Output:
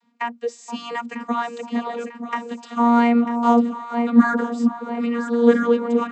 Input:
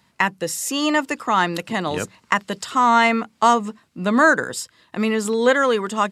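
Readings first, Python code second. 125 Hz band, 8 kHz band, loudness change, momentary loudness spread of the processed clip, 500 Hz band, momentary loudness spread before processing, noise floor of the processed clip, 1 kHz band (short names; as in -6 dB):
n/a, under -15 dB, -1.0 dB, 13 LU, -1.0 dB, 11 LU, -46 dBFS, -4.0 dB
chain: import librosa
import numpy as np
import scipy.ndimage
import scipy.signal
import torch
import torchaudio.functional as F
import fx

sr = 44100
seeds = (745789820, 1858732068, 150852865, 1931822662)

y = fx.echo_alternate(x, sr, ms=473, hz=1000.0, feedback_pct=72, wet_db=-7)
y = fx.vocoder(y, sr, bands=32, carrier='saw', carrier_hz=236.0)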